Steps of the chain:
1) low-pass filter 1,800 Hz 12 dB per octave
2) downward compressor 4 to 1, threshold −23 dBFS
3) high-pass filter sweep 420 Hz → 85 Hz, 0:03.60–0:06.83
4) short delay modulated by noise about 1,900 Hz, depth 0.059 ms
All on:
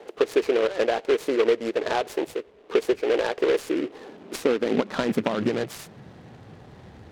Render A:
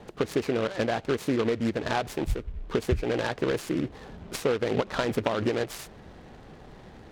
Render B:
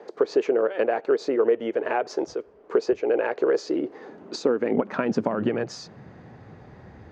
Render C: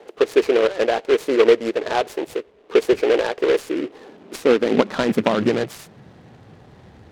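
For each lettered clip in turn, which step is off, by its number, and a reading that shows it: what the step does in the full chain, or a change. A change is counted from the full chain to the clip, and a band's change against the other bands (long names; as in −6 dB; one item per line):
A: 3, 125 Hz band +9.0 dB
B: 4, 4 kHz band −5.5 dB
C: 2, average gain reduction 3.0 dB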